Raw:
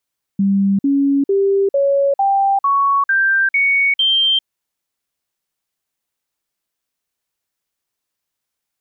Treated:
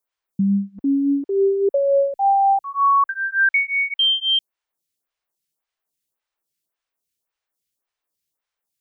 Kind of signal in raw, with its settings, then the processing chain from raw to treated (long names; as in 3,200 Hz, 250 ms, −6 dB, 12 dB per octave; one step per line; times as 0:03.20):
stepped sweep 197 Hz up, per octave 2, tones 9, 0.40 s, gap 0.05 s −11.5 dBFS
parametric band 240 Hz −3 dB 0.85 octaves
phaser with staggered stages 1.8 Hz